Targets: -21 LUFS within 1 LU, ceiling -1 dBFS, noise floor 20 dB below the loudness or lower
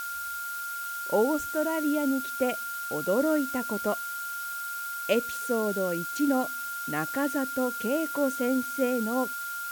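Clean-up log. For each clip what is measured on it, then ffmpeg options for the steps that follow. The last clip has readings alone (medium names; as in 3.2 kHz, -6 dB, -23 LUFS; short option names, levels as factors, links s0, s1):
steady tone 1.4 kHz; tone level -33 dBFS; noise floor -35 dBFS; noise floor target -49 dBFS; loudness -28.5 LUFS; peak level -12.0 dBFS; loudness target -21.0 LUFS
-> -af "bandreject=f=1400:w=30"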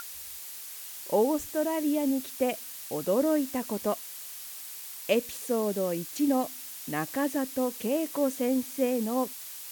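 steady tone not found; noise floor -42 dBFS; noise floor target -50 dBFS
-> -af "afftdn=nr=8:nf=-42"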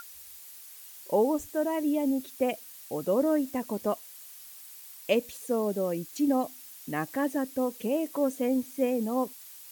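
noise floor -48 dBFS; noise floor target -50 dBFS
-> -af "afftdn=nr=6:nf=-48"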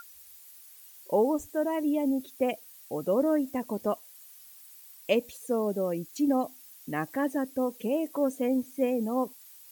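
noise floor -52 dBFS; loudness -29.5 LUFS; peak level -12.5 dBFS; loudness target -21.0 LUFS
-> -af "volume=2.66"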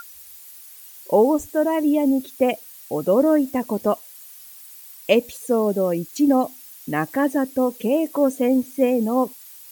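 loudness -21.0 LUFS; peak level -4.0 dBFS; noise floor -43 dBFS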